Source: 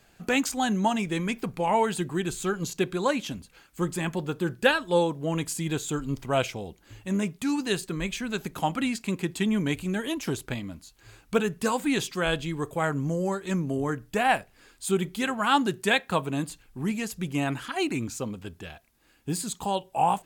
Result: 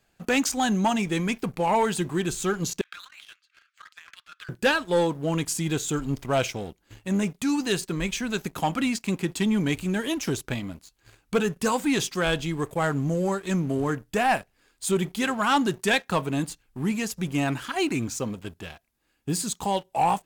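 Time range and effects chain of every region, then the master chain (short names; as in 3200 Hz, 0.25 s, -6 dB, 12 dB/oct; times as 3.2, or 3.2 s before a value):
2.81–4.49 steep high-pass 1200 Hz 72 dB/oct + negative-ratio compressor -43 dBFS + air absorption 170 m
whole clip: dynamic EQ 5800 Hz, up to +5 dB, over -53 dBFS, Q 3.3; sample leveller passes 2; gain -5 dB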